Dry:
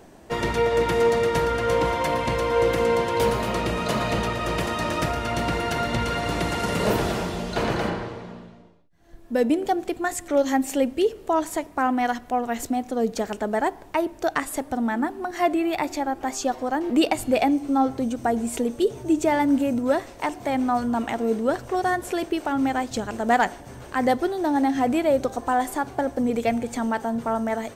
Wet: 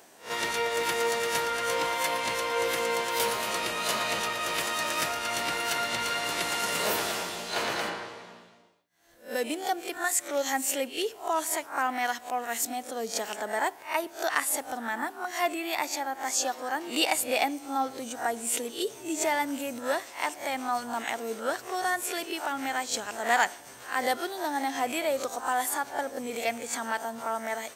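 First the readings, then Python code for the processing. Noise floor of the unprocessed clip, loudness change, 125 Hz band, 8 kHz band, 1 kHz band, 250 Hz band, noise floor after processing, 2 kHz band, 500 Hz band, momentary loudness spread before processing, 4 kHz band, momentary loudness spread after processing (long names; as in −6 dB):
−45 dBFS, −5.0 dB, −19.5 dB, +5.5 dB, −4.5 dB, −13.5 dB, −49 dBFS, 0.0 dB, −8.5 dB, 6 LU, +2.5 dB, 6 LU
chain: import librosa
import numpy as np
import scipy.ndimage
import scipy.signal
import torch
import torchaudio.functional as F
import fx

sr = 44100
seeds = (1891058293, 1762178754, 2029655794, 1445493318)

y = fx.spec_swells(x, sr, rise_s=0.31)
y = fx.highpass(y, sr, hz=1400.0, slope=6)
y = fx.high_shelf(y, sr, hz=7000.0, db=6.5)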